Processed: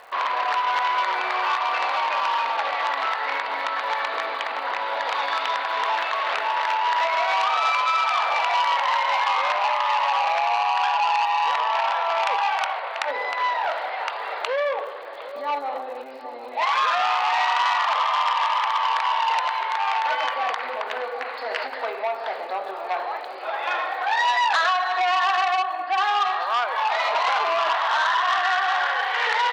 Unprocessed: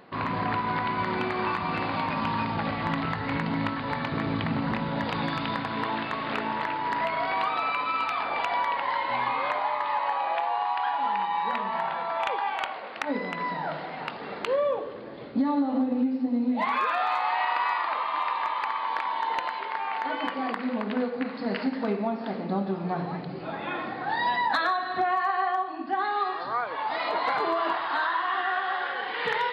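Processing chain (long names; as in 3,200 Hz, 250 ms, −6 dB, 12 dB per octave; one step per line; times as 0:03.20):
sub-octave generator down 1 octave, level −5 dB
low-pass filter 4,300 Hz 12 dB per octave
brickwall limiter −19.5 dBFS, peak gain reduction 4.5 dB
inverse Chebyshev high-pass filter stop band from 170 Hz, stop band 60 dB
slap from a distant wall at 130 metres, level −14 dB
surface crackle 69 per second −49 dBFS
saturating transformer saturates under 3,000 Hz
level +9 dB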